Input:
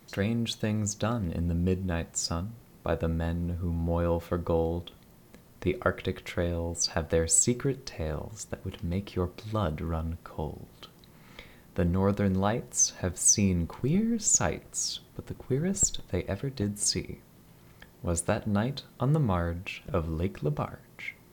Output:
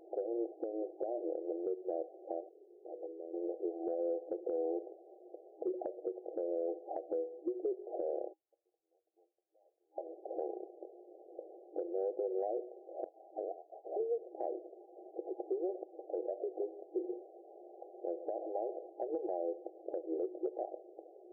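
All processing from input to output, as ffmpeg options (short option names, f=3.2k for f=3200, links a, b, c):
-filter_complex "[0:a]asettb=1/sr,asplit=3[a][b][c];[a]atrim=end=2.494[d];[b]atrim=start=2.49:end=3.34,asetpts=PTS-STARTPTS,afade=t=in:d=0.004:c=qsin,afade=t=out:st=0.846:d=0.004:c=qsin,bandpass=f=400:t=q:w=4.1,acompressor=threshold=-51dB:ratio=2.5:attack=3.2:release=140:knee=1:detection=peak,aeval=exprs='(mod(106*val(0)+1,2)-1)/106':c=same[e];[c]atrim=start=3.336[f];[d][e]acrossfade=d=0.004:c1=hsin:c2=qsin[g];[g][f]acrossfade=d=0.004:c1=qsin:c2=hsin,asettb=1/sr,asplit=3[h][i][j];[h]atrim=end=8.334[k];[i]atrim=start=8.33:end=9.98,asetpts=PTS-STARTPTS,afade=t=in:d=0.004:c=qsin,afade=t=out:st=1.646:d=0.004:c=qsin,afreqshift=-14,asoftclip=type=hard:threshold=-25.5dB,bandpass=f=5.7k:t=q:w=11[l];[j]atrim=start=9.976[m];[k][l]acrossfade=d=0.004:c1=hsin:c2=qsin[n];[n][m]acrossfade=d=0.004:c1=qsin:c2=hsin,asettb=1/sr,asplit=3[o][p][q];[o]atrim=end=13.044[r];[p]atrim=start=13.04:end=13.97,asetpts=PTS-STARTPTS,afade=t=in:d=0.004:c=qsin,afade=t=out:st=0.926:d=0.004:c=qsin,aemphasis=mode=production:type=75kf,lowpass=f=2.5k:t=q:w=0.5098,lowpass=f=2.5k:t=q:w=0.6013,lowpass=f=2.5k:t=q:w=0.9,lowpass=f=2.5k:t=q:w=2.563,afreqshift=-2900[s];[q]atrim=start=13.966[t];[r][s]acrossfade=d=0.004:c1=hsin:c2=qsin[u];[u][t]acrossfade=d=0.004:c1=qsin:c2=hsin,asettb=1/sr,asplit=3[v][w][x];[v]atrim=end=14.844[y];[w]atrim=start=14.84:end=18.92,asetpts=PTS-STARTPTS,afade=t=in:d=0.004:c=qsin,afade=t=out:st=4.076:d=0.004:c=qsin,acompressor=threshold=-36dB:ratio=2:attack=3.2:release=140:knee=1:detection=peak,lowpass=f=1.1k:t=q:w=9.2,aecho=1:1:120:0.112,atrim=end_sample=179928[z];[x]atrim=start=18.916[aa];[y][z]acrossfade=d=0.004:c1=hsin:c2=qsin[ab];[ab][aa]acrossfade=d=0.004:c1=qsin:c2=hsin,afftfilt=real='re*between(b*sr/4096,320,810)':imag='im*between(b*sr/4096,320,810)':win_size=4096:overlap=0.75,acompressor=threshold=-36dB:ratio=5,alimiter=level_in=11dB:limit=-24dB:level=0:latency=1:release=202,volume=-11dB,volume=8dB"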